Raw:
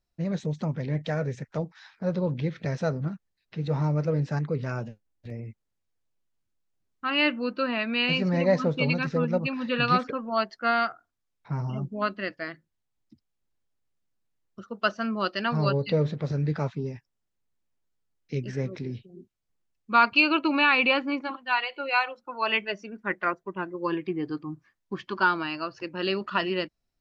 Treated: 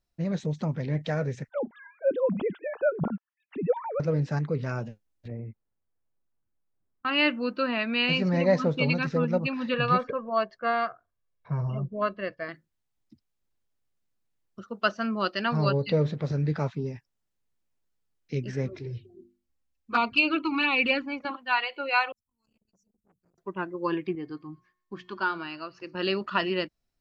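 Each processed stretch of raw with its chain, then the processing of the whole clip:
1.49–4 sine-wave speech + dynamic EQ 2100 Hz, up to -6 dB, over -52 dBFS, Q 2.1
5.28–7.05 LPF 1500 Hz + auto swell 0.618 s
9.74–12.49 LPF 1500 Hz 6 dB/oct + comb 1.8 ms, depth 57%
18.68–21.25 bell 74 Hz +10.5 dB 1.2 oct + notches 50/100/150/200/250/300/350 Hz + envelope flanger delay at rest 3.8 ms, full sweep at -16 dBFS
22.12–23.38 inverse Chebyshev band-stop 280–3700 Hz, stop band 50 dB + core saturation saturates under 880 Hz
24.15–25.95 notches 60/120/180/240 Hz + resonator 360 Hz, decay 0.73 s, mix 50% + thin delay 0.121 s, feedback 37%, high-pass 1900 Hz, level -21 dB
whole clip: dry

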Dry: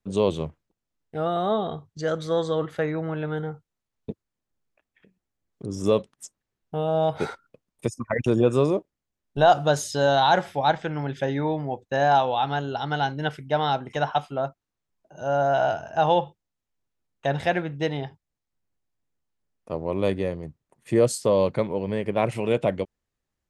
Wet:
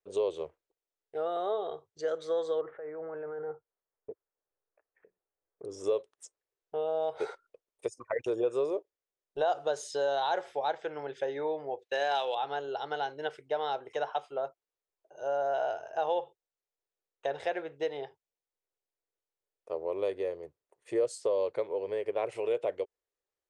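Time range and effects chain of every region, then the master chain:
2.61–5.65 inverse Chebyshev low-pass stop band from 4700 Hz, stop band 50 dB + negative-ratio compressor -32 dBFS + bell 360 Hz -3 dB 0.35 oct
11.79–12.35 median filter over 5 samples + weighting filter D
whole clip: steep low-pass 10000 Hz 36 dB/oct; resonant low shelf 300 Hz -12.5 dB, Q 3; compressor 2:1, threshold -21 dBFS; gain -8.5 dB

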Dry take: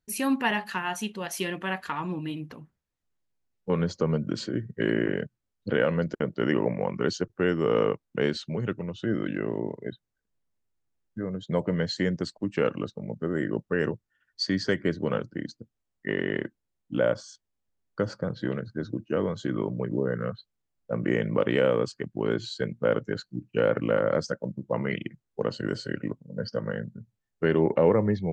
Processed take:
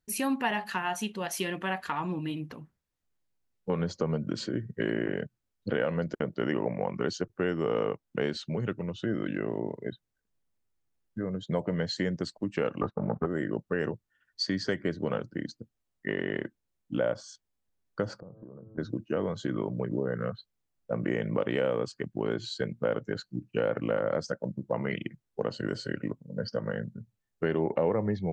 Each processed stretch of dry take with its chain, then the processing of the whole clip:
12.81–13.26 sample leveller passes 2 + synth low-pass 1200 Hz, resonance Q 2.4
18.2–18.78 de-hum 109.3 Hz, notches 12 + compressor 10:1, threshold -42 dBFS + elliptic low-pass 1100 Hz, stop band 50 dB
whole clip: dynamic EQ 730 Hz, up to +5 dB, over -40 dBFS, Q 2.8; compressor 2:1, threshold -28 dBFS

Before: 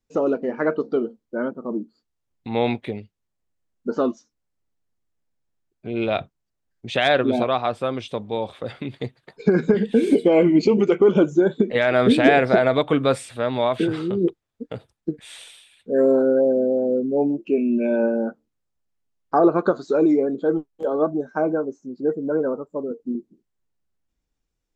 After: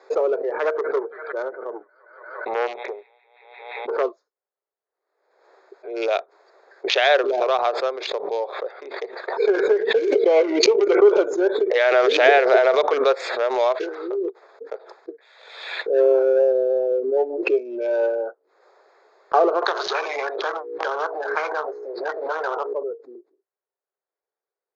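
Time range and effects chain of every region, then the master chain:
0.56–4.03 LPF 3400 Hz 24 dB/oct + thin delay 0.174 s, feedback 70%, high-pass 2200 Hz, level -12 dB + core saturation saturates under 880 Hz
19.62–22.73 air absorption 240 m + notches 60/120/180/240/300/360/420/480 Hz + spectral compressor 10:1
whole clip: Wiener smoothing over 15 samples; Chebyshev band-pass 390–6600 Hz, order 5; backwards sustainer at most 58 dB/s; gain +2 dB

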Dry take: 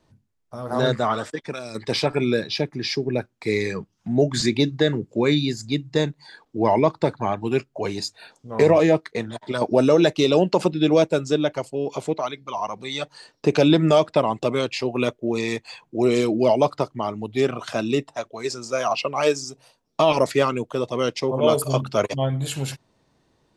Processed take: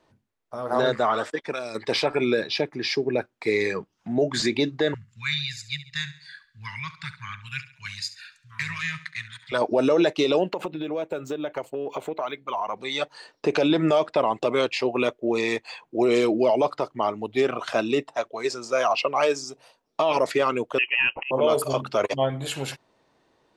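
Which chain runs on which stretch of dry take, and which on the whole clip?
4.94–9.52 inverse Chebyshev band-stop 270–760 Hz, stop band 50 dB + feedback echo 69 ms, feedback 41%, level -15 dB
10.49–12.77 bell 5100 Hz -12.5 dB 0.43 oct + compressor 16:1, threshold -25 dBFS + decimation joined by straight lines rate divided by 2×
20.78–21.31 auto swell 0.21 s + inverted band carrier 3000 Hz
whole clip: tone controls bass -12 dB, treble -7 dB; limiter -15 dBFS; gain +3 dB

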